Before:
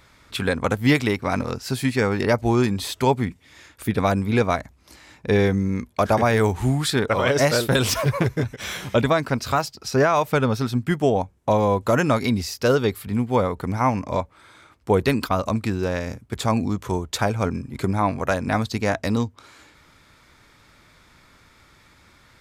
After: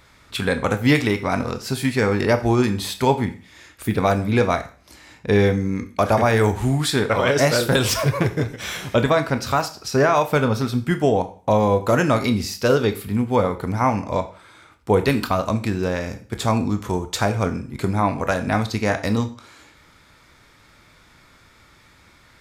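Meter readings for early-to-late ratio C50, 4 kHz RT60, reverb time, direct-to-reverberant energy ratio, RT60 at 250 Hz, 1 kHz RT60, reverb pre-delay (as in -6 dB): 14.0 dB, 0.40 s, 0.40 s, 8.0 dB, 0.40 s, 0.40 s, 20 ms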